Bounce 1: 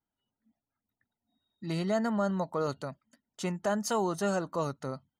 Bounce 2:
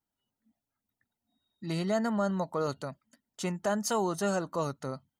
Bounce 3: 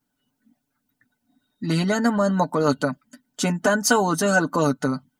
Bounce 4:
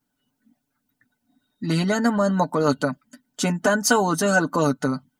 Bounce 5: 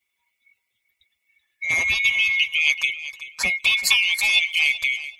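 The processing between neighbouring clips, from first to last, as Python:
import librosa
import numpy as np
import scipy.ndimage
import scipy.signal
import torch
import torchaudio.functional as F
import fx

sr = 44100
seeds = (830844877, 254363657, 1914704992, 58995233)

y1 = fx.high_shelf(x, sr, hz=6000.0, db=4.0)
y2 = y1 + 0.66 * np.pad(y1, (int(6.8 * sr / 1000.0), 0))[:len(y1)]
y2 = fx.hpss(y2, sr, part='percussive', gain_db=6)
y2 = fx.small_body(y2, sr, hz=(240.0, 1500.0), ring_ms=75, db=14)
y2 = F.gain(torch.from_numpy(y2), 5.0).numpy()
y3 = y2
y4 = fx.band_swap(y3, sr, width_hz=2000)
y4 = fx.echo_feedback(y4, sr, ms=381, feedback_pct=18, wet_db=-14.0)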